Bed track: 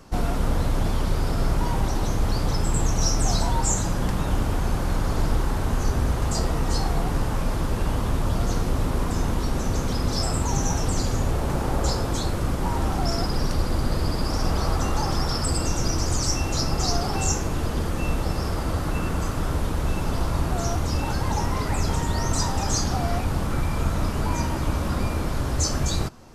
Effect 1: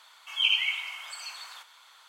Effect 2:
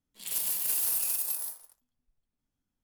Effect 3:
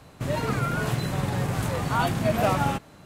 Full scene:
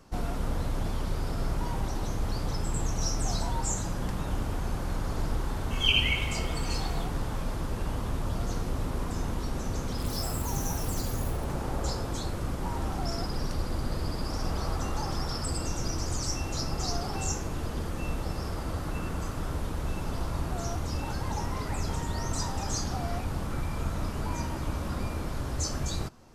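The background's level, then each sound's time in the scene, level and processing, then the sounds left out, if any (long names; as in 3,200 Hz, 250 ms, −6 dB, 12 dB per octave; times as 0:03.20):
bed track −7.5 dB
0:05.44: mix in 1 −0.5 dB
0:09.79: mix in 2 −1.5 dB + downward compressor 4 to 1, threshold −41 dBFS
not used: 3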